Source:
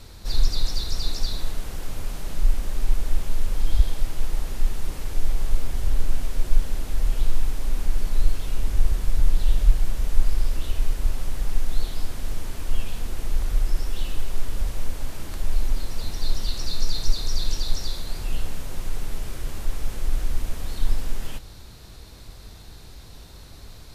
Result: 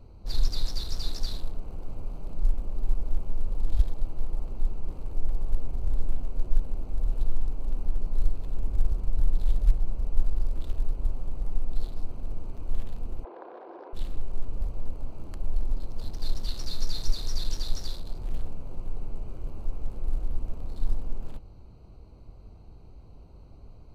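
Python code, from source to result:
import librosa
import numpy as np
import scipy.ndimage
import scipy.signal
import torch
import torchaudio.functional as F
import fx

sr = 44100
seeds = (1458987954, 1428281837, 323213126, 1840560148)

y = fx.wiener(x, sr, points=25)
y = fx.cabinet(y, sr, low_hz=340.0, low_slope=24, high_hz=3300.0, hz=(350.0, 510.0, 730.0, 1000.0, 1600.0, 2800.0), db=(8, 8, 9, 10, 9, -4), at=(13.23, 13.93), fade=0.02)
y = F.gain(torch.from_numpy(y), -4.5).numpy()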